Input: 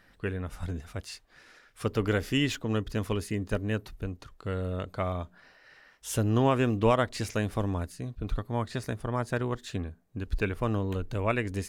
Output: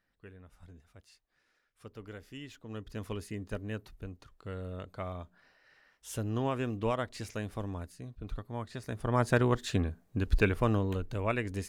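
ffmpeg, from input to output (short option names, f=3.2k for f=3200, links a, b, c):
-af "volume=4dB,afade=t=in:st=2.53:d=0.56:silence=0.281838,afade=t=in:st=8.85:d=0.4:silence=0.251189,afade=t=out:st=10.28:d=0.8:silence=0.421697"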